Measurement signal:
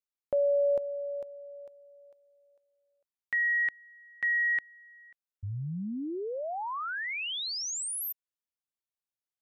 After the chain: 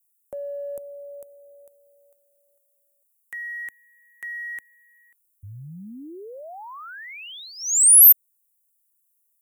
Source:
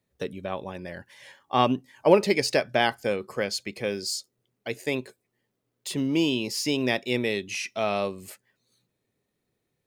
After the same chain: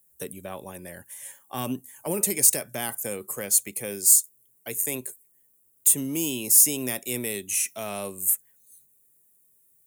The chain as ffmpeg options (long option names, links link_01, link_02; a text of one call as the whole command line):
ffmpeg -i in.wav -filter_complex "[0:a]acrossover=split=280|4400[link_01][link_02][link_03];[link_02]acompressor=threshold=-27dB:ratio=6:attack=1.9:release=22:knee=2.83:detection=peak[link_04];[link_01][link_04][link_03]amix=inputs=3:normalize=0,aexciter=amount=14.2:drive=9:freq=7300,volume=-4dB" out.wav